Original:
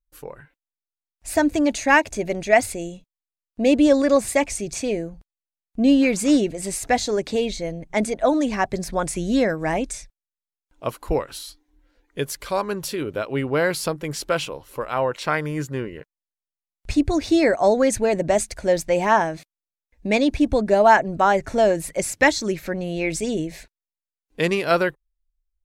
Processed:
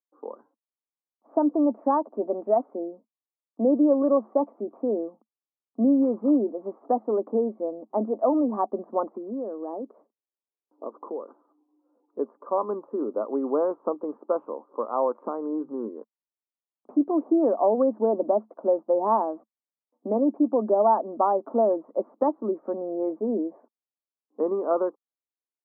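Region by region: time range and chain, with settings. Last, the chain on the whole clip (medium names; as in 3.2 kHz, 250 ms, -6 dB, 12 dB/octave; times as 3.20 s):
9.09–11.29 s: peaking EQ 410 Hz +7.5 dB 0.97 oct + compression 5:1, threshold -30 dBFS
15.22–15.86 s: bass shelf 360 Hz +9.5 dB + hum notches 50/100/150/200 Hz + compression 3:1, threshold -24 dBFS
whole clip: compression 2:1, threshold -19 dBFS; Chebyshev band-pass 220–1200 Hz, order 5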